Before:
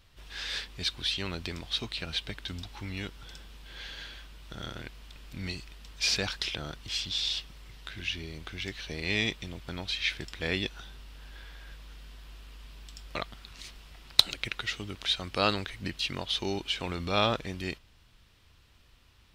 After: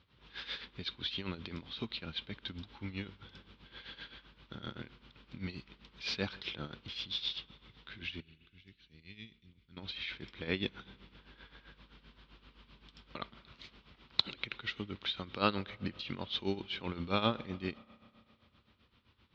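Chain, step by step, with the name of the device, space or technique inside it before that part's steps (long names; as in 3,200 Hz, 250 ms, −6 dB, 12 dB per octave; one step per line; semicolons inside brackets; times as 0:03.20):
0:08.20–0:09.77: guitar amp tone stack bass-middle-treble 6-0-2
combo amplifier with spring reverb and tremolo (spring reverb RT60 2.8 s, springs 31 ms, chirp 60 ms, DRR 19 dB; amplitude tremolo 7.7 Hz, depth 75%; loudspeaker in its box 94–3,800 Hz, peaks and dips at 220 Hz +4 dB, 690 Hz −8 dB, 1,800 Hz −5 dB, 2,700 Hz −4 dB)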